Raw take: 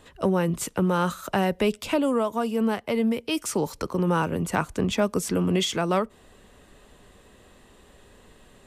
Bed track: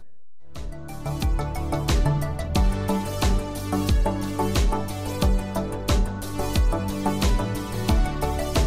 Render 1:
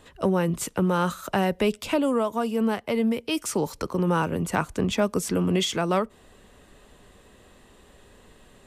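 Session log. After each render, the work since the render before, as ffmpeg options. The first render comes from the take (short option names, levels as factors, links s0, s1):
-af anull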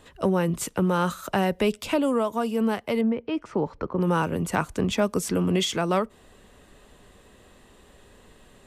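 -filter_complex "[0:a]asettb=1/sr,asplit=3[s0][s1][s2];[s0]atrim=end=3.014[s3];[s1]atrim=start=3.01:end=4.01,asetpts=PTS-STARTPTS,afade=t=in:d=0.004:c=qsin,afade=t=out:st=0.996:d=0.004:c=qsin,lowpass=1700[s4];[s2]atrim=start=4.006[s5];[s3][s4]acrossfade=d=0.004:c1=hsin:c2=qsin[s6];[s6][s5]acrossfade=d=0.004:c1=qsin:c2=hsin"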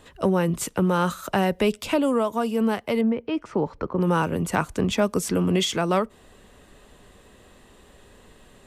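-af "volume=1.19"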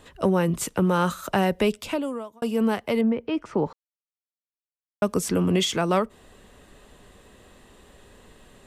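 -filter_complex "[0:a]asplit=4[s0][s1][s2][s3];[s0]atrim=end=2.42,asetpts=PTS-STARTPTS,afade=t=out:st=1.61:d=0.81[s4];[s1]atrim=start=2.42:end=3.73,asetpts=PTS-STARTPTS,afade=t=in:d=0.004:c=hsin,afade=t=out:st=1.306:d=0.004:c=hsin[s5];[s2]atrim=start=3.73:end=5.02,asetpts=PTS-STARTPTS,volume=0[s6];[s3]atrim=start=5.02,asetpts=PTS-STARTPTS,afade=t=in:d=0.004:c=hsin[s7];[s4][s5][s6][s7]concat=n=4:v=0:a=1"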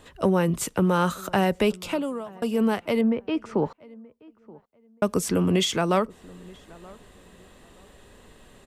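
-filter_complex "[0:a]asplit=2[s0][s1];[s1]adelay=927,lowpass=f=1800:p=1,volume=0.0708,asplit=2[s2][s3];[s3]adelay=927,lowpass=f=1800:p=1,volume=0.24[s4];[s0][s2][s4]amix=inputs=3:normalize=0"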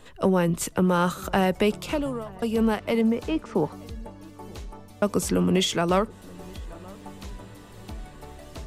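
-filter_complex "[1:a]volume=0.126[s0];[0:a][s0]amix=inputs=2:normalize=0"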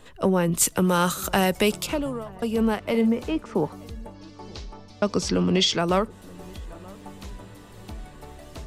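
-filter_complex "[0:a]asettb=1/sr,asplit=3[s0][s1][s2];[s0]atrim=end=0.524[s3];[s1]atrim=start=0.52:end=1.87,asetpts=PTS-STARTPTS,afade=t=in:d=0.004:c=qsin,afade=t=out:st=1.346:d=0.004:c=qsin,highshelf=f=3200:g=11.5[s4];[s2]atrim=start=1.866[s5];[s3][s4]acrossfade=d=0.004:c1=hsin:c2=qsin[s6];[s6][s5]acrossfade=d=0.004:c1=qsin:c2=hsin,asettb=1/sr,asplit=3[s7][s8][s9];[s7]atrim=end=2.894[s10];[s8]atrim=start=2.89:end=3.32,asetpts=PTS-STARTPTS,afade=t=in:d=0.004:c=qsin,afade=t=out:st=0.426:d=0.004:c=qsin,asplit=2[s11][s12];[s12]adelay=44,volume=0.251[s13];[s11][s13]amix=inputs=2:normalize=0,atrim=end_sample=18963[s14];[s9]atrim=start=3.316[s15];[s10][s14]acrossfade=d=0.004:c1=hsin:c2=qsin[s16];[s16][s15]acrossfade=d=0.004:c1=qsin:c2=hsin,asettb=1/sr,asplit=3[s17][s18][s19];[s17]atrim=end=4.144[s20];[s18]atrim=start=4.14:end=5.79,asetpts=PTS-STARTPTS,afade=t=in:d=0.004:c=qsin,afade=t=out:st=1.646:d=0.004:c=qsin,lowpass=f=5000:t=q:w=3[s21];[s19]atrim=start=5.786[s22];[s20][s21]acrossfade=d=0.004:c1=hsin:c2=qsin[s23];[s23][s22]acrossfade=d=0.004:c1=qsin:c2=hsin"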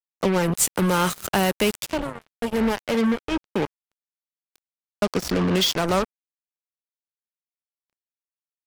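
-af "acrusher=bits=3:mix=0:aa=0.5"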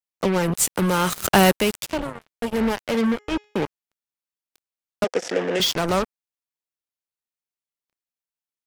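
-filter_complex "[0:a]asettb=1/sr,asplit=3[s0][s1][s2];[s0]atrim=end=1.124[s3];[s1]atrim=start=1.12:end=1.57,asetpts=PTS-STARTPTS,afade=t=in:d=0.004:c=qsin,afade=t=out:st=0.446:d=0.004:c=qsin,acontrast=76[s4];[s2]atrim=start=1.566[s5];[s3][s4]acrossfade=d=0.004:c1=hsin:c2=qsin[s6];[s6][s5]acrossfade=d=0.004:c1=qsin:c2=hsin,asettb=1/sr,asplit=3[s7][s8][s9];[s7]atrim=end=2.964[s10];[s8]atrim=start=2.96:end=3.64,asetpts=PTS-STARTPTS,afade=t=in:d=0.004:c=qsin,afade=t=out:st=0.676:d=0.004:c=qsin,bandreject=f=418.2:t=h:w=4,bandreject=f=836.4:t=h:w=4,bandreject=f=1254.6:t=h:w=4,bandreject=f=1672.8:t=h:w=4,bandreject=f=2091:t=h:w=4,bandreject=f=2509.2:t=h:w=4,bandreject=f=2927.4:t=h:w=4,bandreject=f=3345.6:t=h:w=4,bandreject=f=3763.8:t=h:w=4,bandreject=f=4182:t=h:w=4,bandreject=f=4600.2:t=h:w=4,bandreject=f=5018.4:t=h:w=4,bandreject=f=5436.6:t=h:w=4,bandreject=f=5854.8:t=h:w=4,bandreject=f=6273:t=h:w=4,bandreject=f=6691.2:t=h:w=4,bandreject=f=7109.4:t=h:w=4,bandreject=f=7527.6:t=h:w=4[s11];[s9]atrim=start=3.636[s12];[s10][s11]acrossfade=d=0.004:c1=hsin:c2=qsin[s13];[s13][s12]acrossfade=d=0.004:c1=qsin:c2=hsin,asettb=1/sr,asplit=3[s14][s15][s16];[s14]atrim=end=5.044[s17];[s15]atrim=start=5.04:end=5.6,asetpts=PTS-STARTPTS,afade=t=in:d=0.004:c=qsin,afade=t=out:st=0.556:d=0.004:c=qsin,highpass=370,equalizer=f=500:t=q:w=4:g=9,equalizer=f=740:t=q:w=4:g=3,equalizer=f=1100:t=q:w=4:g=-9,equalizer=f=1800:t=q:w=4:g=5,equalizer=f=4300:t=q:w=4:g=-8,lowpass=f=8300:w=0.5412,lowpass=f=8300:w=1.3066[s18];[s16]atrim=start=5.596[s19];[s17][s18]acrossfade=d=0.004:c1=hsin:c2=qsin[s20];[s20][s19]acrossfade=d=0.004:c1=qsin:c2=hsin"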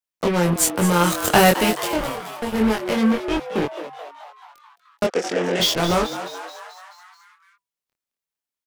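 -filter_complex "[0:a]asplit=2[s0][s1];[s1]adelay=23,volume=0.75[s2];[s0][s2]amix=inputs=2:normalize=0,asplit=8[s3][s4][s5][s6][s7][s8][s9][s10];[s4]adelay=216,afreqshift=140,volume=0.266[s11];[s5]adelay=432,afreqshift=280,volume=0.157[s12];[s6]adelay=648,afreqshift=420,volume=0.0923[s13];[s7]adelay=864,afreqshift=560,volume=0.055[s14];[s8]adelay=1080,afreqshift=700,volume=0.0324[s15];[s9]adelay=1296,afreqshift=840,volume=0.0191[s16];[s10]adelay=1512,afreqshift=980,volume=0.0112[s17];[s3][s11][s12][s13][s14][s15][s16][s17]amix=inputs=8:normalize=0"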